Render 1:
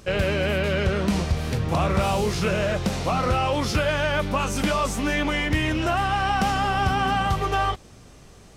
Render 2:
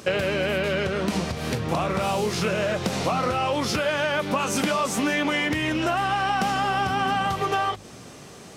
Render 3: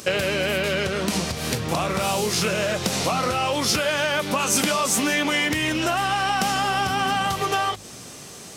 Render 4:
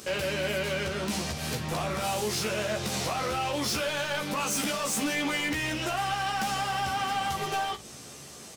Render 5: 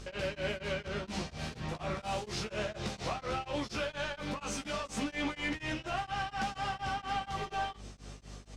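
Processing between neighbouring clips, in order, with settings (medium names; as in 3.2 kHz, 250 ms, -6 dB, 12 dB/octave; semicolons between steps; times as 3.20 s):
hum notches 50/100/150/200 Hz; compression 6:1, threshold -28 dBFS, peak gain reduction 10 dB; high-pass 140 Hz 12 dB/octave; trim +7.5 dB
treble shelf 3.8 kHz +11.5 dB
overload inside the chain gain 21 dB; early reflections 14 ms -3 dB, 59 ms -13 dB; trim -7 dB
hum 50 Hz, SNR 13 dB; distance through air 89 m; tremolo of two beating tones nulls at 4.2 Hz; trim -3 dB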